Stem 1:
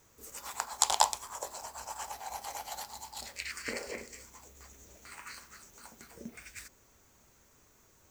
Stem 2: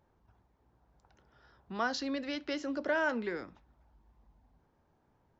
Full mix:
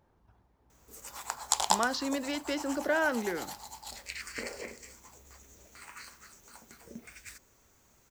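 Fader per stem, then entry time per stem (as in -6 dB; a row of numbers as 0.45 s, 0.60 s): -1.0 dB, +2.5 dB; 0.70 s, 0.00 s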